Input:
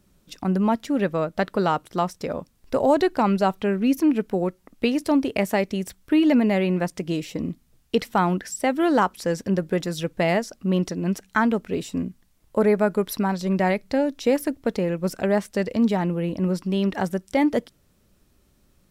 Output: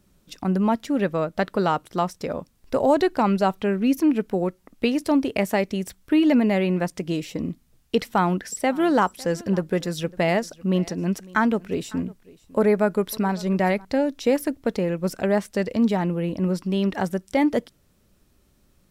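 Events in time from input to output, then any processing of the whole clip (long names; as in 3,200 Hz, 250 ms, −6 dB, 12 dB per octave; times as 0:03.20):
0:07.97–0:13.85: single-tap delay 553 ms −22.5 dB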